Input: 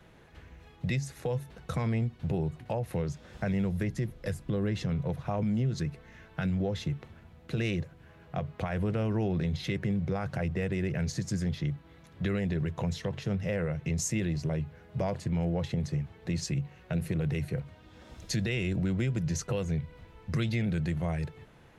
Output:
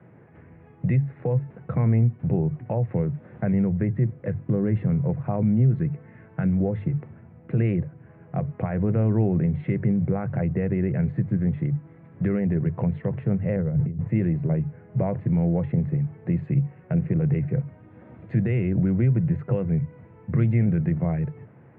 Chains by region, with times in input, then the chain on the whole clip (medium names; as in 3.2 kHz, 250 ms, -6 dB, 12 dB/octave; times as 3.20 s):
13.56–14.08 s: bass shelf 220 Hz +12 dB + compressor with a negative ratio -28 dBFS, ratio -0.5 + low-pass 1.6 kHz
whole clip: elliptic band-pass 110–2200 Hz, stop band 40 dB; tilt EQ -3 dB/octave; hum notches 50/100/150 Hz; trim +2 dB